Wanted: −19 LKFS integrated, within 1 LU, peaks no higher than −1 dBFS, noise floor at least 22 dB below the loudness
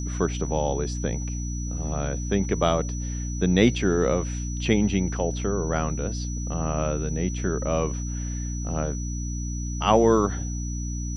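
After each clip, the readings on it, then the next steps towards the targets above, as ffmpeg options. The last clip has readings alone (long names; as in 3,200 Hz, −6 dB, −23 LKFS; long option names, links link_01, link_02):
mains hum 60 Hz; hum harmonics up to 300 Hz; level of the hum −27 dBFS; interfering tone 5,900 Hz; level of the tone −38 dBFS; integrated loudness −26.0 LKFS; sample peak −5.0 dBFS; target loudness −19.0 LKFS
→ -af "bandreject=frequency=60:width_type=h:width=4,bandreject=frequency=120:width_type=h:width=4,bandreject=frequency=180:width_type=h:width=4,bandreject=frequency=240:width_type=h:width=4,bandreject=frequency=300:width_type=h:width=4"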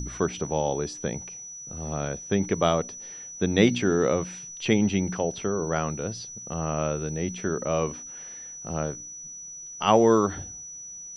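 mains hum none found; interfering tone 5,900 Hz; level of the tone −38 dBFS
→ -af "bandreject=frequency=5900:width=30"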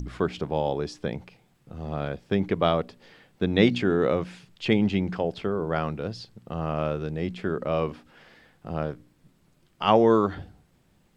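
interfering tone none found; integrated loudness −26.5 LKFS; sample peak −5.5 dBFS; target loudness −19.0 LKFS
→ -af "volume=7.5dB,alimiter=limit=-1dB:level=0:latency=1"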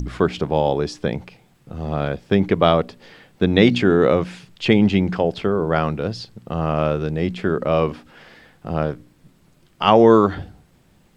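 integrated loudness −19.5 LKFS; sample peak −1.0 dBFS; background noise floor −56 dBFS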